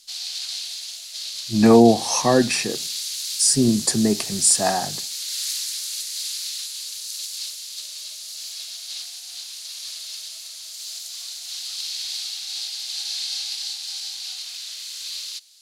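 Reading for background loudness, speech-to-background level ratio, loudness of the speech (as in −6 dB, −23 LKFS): −28.5 LKFS, 10.5 dB, −18.0 LKFS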